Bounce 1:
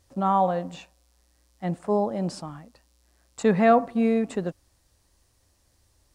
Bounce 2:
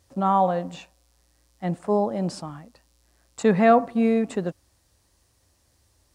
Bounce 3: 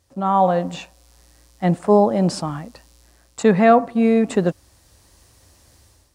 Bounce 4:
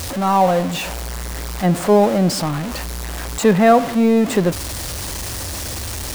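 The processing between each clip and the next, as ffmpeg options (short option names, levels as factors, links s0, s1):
-af "highpass=48,volume=1.19"
-af "dynaudnorm=f=160:g=5:m=4.47,volume=0.891"
-af "aeval=exprs='val(0)+0.5*0.0891*sgn(val(0))':c=same"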